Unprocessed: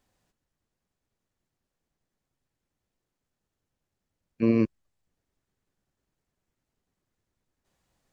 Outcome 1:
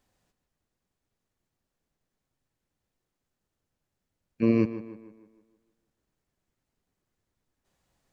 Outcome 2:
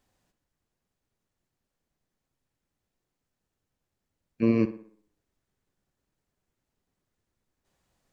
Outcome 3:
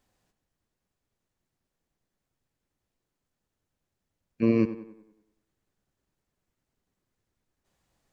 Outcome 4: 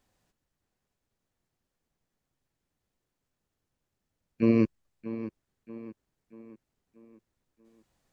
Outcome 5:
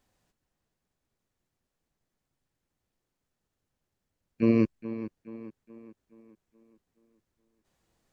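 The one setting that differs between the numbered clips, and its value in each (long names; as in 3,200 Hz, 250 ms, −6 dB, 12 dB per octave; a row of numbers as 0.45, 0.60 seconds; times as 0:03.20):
tape delay, delay time: 154, 62, 96, 634, 424 milliseconds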